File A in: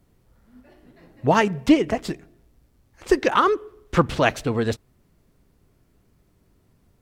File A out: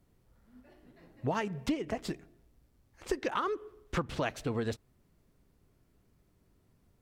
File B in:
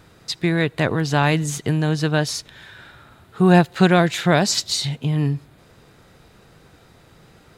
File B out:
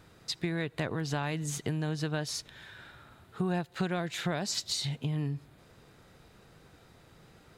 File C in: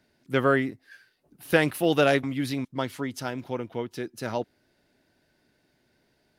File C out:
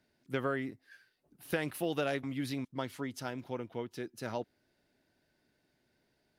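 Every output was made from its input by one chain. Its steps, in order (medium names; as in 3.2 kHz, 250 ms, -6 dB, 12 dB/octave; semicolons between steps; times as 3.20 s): compression 5:1, threshold -22 dBFS; trim -7 dB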